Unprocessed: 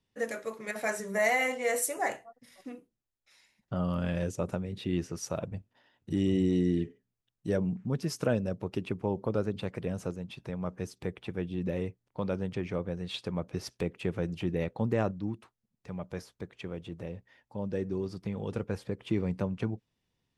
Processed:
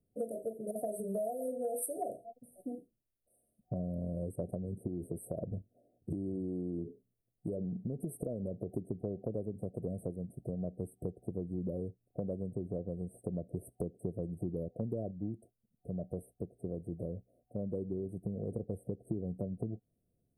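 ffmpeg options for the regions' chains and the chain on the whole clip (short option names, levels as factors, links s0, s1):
-filter_complex "[0:a]asettb=1/sr,asplit=3[s0][s1][s2];[s0]atrim=end=4.874[s3];[s1]atrim=start=4.87:end=8.74,asetpts=PTS-STARTPTS,afade=t=in:d=0.004:c=qsin,afade=t=out:st=3.866:d=0.004:c=qsin,acompressor=threshold=0.0251:ratio=6:attack=3.2:release=140:knee=1:detection=peak,equalizer=f=420:t=o:w=1.2:g=3[s4];[s2]atrim=start=8.736[s5];[s3][s4]acrossfade=d=0.004:c1=hsin:c2=qsin[s6];[s6][s5]acrossfade=d=0.004:c1=qsin:c2=hsin,afftfilt=real='re*(1-between(b*sr/4096,740,8100))':imag='im*(1-between(b*sr/4096,740,8100))':win_size=4096:overlap=0.75,equalizer=f=5900:w=1.9:g=-7,acompressor=threshold=0.0158:ratio=6,volume=1.33"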